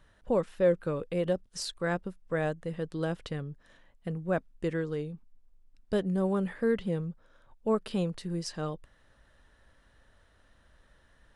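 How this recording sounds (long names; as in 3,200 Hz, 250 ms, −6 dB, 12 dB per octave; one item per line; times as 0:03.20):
background noise floor −64 dBFS
spectral slope −6.0 dB per octave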